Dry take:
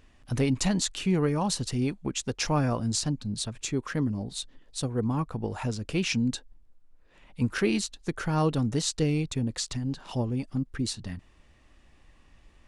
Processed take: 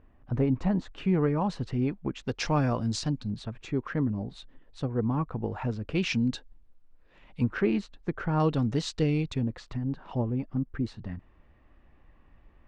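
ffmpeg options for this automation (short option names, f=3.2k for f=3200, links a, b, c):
-af "asetnsamples=n=441:p=0,asendcmd='0.98 lowpass f 2000;2.27 lowpass f 4500;3.3 lowpass f 2100;5.95 lowpass f 4200;7.44 lowpass f 1800;8.4 lowpass f 3800;9.43 lowpass f 1700',lowpass=1.2k"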